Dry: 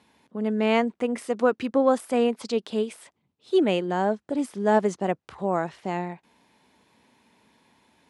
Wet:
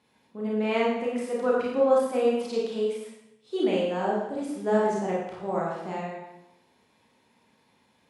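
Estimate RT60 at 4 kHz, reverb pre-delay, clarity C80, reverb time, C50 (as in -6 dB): 0.80 s, 30 ms, 3.5 dB, 0.85 s, 0.5 dB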